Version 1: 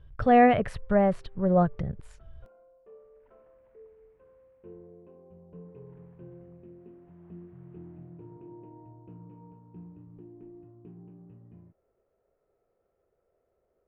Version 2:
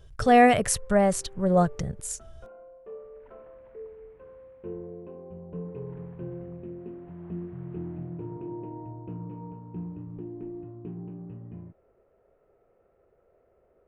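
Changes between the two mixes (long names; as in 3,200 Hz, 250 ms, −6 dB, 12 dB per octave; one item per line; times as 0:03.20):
speech: remove high-frequency loss of the air 430 metres
background +10.0 dB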